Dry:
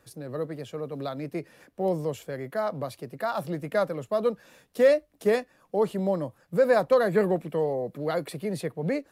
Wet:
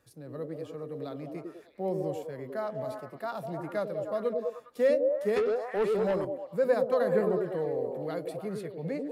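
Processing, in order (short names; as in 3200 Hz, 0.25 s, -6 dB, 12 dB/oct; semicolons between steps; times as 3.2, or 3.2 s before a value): harmonic-percussive split percussive -5 dB; delay with a stepping band-pass 0.101 s, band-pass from 330 Hz, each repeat 0.7 oct, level 0 dB; 5.36–6.25 overdrive pedal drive 17 dB, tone 7300 Hz, clips at -14.5 dBFS; gain -5.5 dB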